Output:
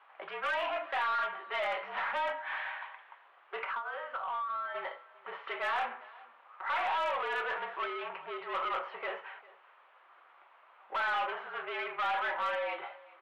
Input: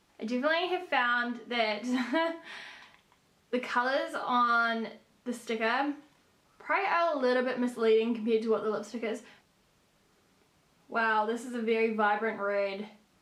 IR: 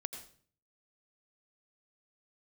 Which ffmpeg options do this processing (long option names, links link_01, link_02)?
-filter_complex "[0:a]equalizer=frequency=1200:width_type=o:width=1.7:gain=15,asplit=3[link_01][link_02][link_03];[link_01]afade=type=out:start_time=3.63:duration=0.02[link_04];[link_02]acompressor=threshold=-32dB:ratio=12,afade=type=in:start_time=3.63:duration=0.02,afade=type=out:start_time=4.74:duration=0.02[link_05];[link_03]afade=type=in:start_time=4.74:duration=0.02[link_06];[link_04][link_05][link_06]amix=inputs=3:normalize=0,asoftclip=type=tanh:threshold=-29.5dB,highpass=frequency=600:width_type=q:width=0.5412,highpass=frequency=600:width_type=q:width=1.307,lowpass=frequency=3200:width_type=q:width=0.5176,lowpass=frequency=3200:width_type=q:width=0.7071,lowpass=frequency=3200:width_type=q:width=1.932,afreqshift=-53,asplit=2[link_07][link_08];[link_08]aecho=0:1:399:0.0794[link_09];[link_07][link_09]amix=inputs=2:normalize=0,aeval=exprs='0.0562*(cos(1*acos(clip(val(0)/0.0562,-1,1)))-cos(1*PI/2))+0.00447*(cos(2*acos(clip(val(0)/0.0562,-1,1)))-cos(2*PI/2))+0.000794*(cos(4*acos(clip(val(0)/0.0562,-1,1)))-cos(4*PI/2))':channel_layout=same"